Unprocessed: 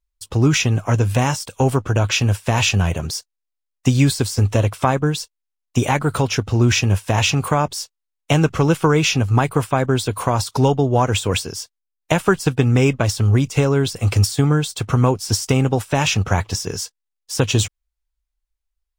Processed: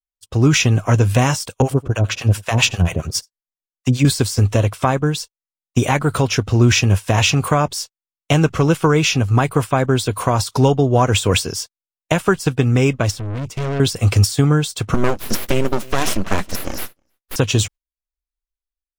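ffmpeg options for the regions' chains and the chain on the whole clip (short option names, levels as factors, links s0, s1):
-filter_complex "[0:a]asettb=1/sr,asplit=3[s0][s1][s2];[s0]atrim=end=1.624[s3];[s1]atrim=start=1.62:end=4.05,asetpts=PTS-STARTPTS,afade=t=in:d=0.004:c=qsin,afade=t=out:st=2.426:d=0.004:c=qsin,acrossover=split=640[s4][s5];[s4]aeval=exprs='val(0)*(1-1/2+1/2*cos(2*PI*7.4*n/s))':c=same[s6];[s5]aeval=exprs='val(0)*(1-1/2-1/2*cos(2*PI*7.4*n/s))':c=same[s7];[s6][s7]amix=inputs=2:normalize=0,aecho=1:1:88:0.075,atrim=end_sample=107163[s8];[s2]atrim=start=4.046[s9];[s3][s8]acrossfade=d=0.004:c1=hsin:c2=qsin[s10];[s10][s9]acrossfade=d=0.004:c1=qsin:c2=hsin,asettb=1/sr,asplit=3[s11][s12][s13];[s11]atrim=end=13.114[s14];[s12]atrim=start=13.11:end=13.8,asetpts=PTS-STARTPTS,afade=t=in:d=0.004:c=qsin,afade=t=out:st=0.686:d=0.004:c=qsin,bass=f=250:g=5,treble=f=4000:g=-5,aeval=exprs='(tanh(17.8*val(0)+0.45)-tanh(0.45))/17.8':c=same[s15];[s13]atrim=start=13.796[s16];[s14][s15]acrossfade=d=0.004:c1=hsin:c2=qsin[s17];[s17][s16]acrossfade=d=0.004:c1=qsin:c2=hsin,asettb=1/sr,asplit=3[s18][s19][s20];[s18]atrim=end=14.944[s21];[s19]atrim=start=14.94:end=17.36,asetpts=PTS-STARTPTS,afade=t=in:d=0.004:c=qsin,afade=t=out:st=2.416:d=0.004:c=qsin,aeval=exprs='abs(val(0))':c=same,aecho=1:1:316:0.075,atrim=end_sample=106722[s22];[s20]atrim=start=17.356[s23];[s21][s22]acrossfade=d=0.004:c1=hsin:c2=qsin[s24];[s24][s23]acrossfade=d=0.004:c1=qsin:c2=hsin,agate=range=0.0891:threshold=0.0224:ratio=16:detection=peak,bandreject=f=860:w=14,dynaudnorm=f=170:g=5:m=3.76,volume=0.891"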